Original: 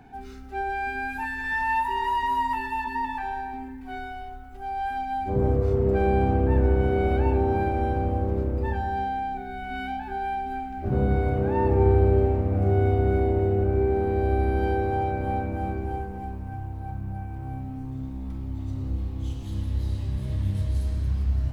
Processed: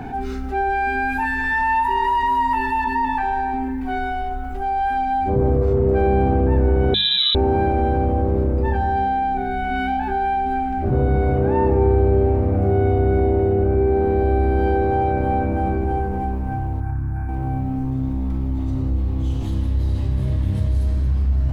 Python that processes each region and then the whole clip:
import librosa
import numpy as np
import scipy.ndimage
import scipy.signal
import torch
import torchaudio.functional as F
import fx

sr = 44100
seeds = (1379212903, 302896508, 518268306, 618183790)

y = fx.chain(x, sr, fx.freq_invert(carrier_hz=3900),
    fx.peak_eq(hz=830.0, db=-9.5, octaves=0.4), at=(6.94, 7.35))
y = fx.chain(y, sr, fx.fixed_phaser(hz=1400.0, stages=4),
    fx.notch_comb(f0_hz=200.0),
    fx.doppler_dist(depth_ms=0.14), at=(16.8, 17.29))
y = fx.high_shelf(y, sr, hz=2200.0, db=-7.5)
y = fx.hum_notches(y, sr, base_hz=50, count=4)
y = fx.env_flatten(y, sr, amount_pct=50)
y = y * librosa.db_to_amplitude(3.0)